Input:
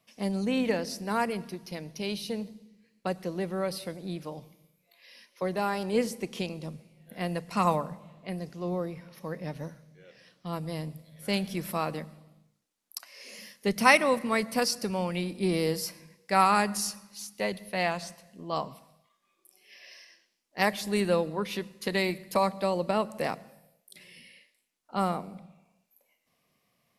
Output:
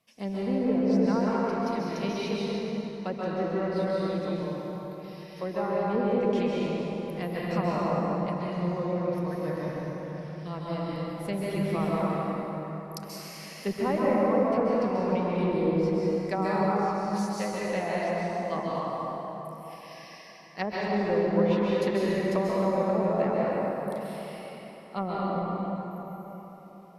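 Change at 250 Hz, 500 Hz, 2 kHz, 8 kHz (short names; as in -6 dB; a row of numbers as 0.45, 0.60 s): +5.0, +4.5, -5.5, -9.5 dB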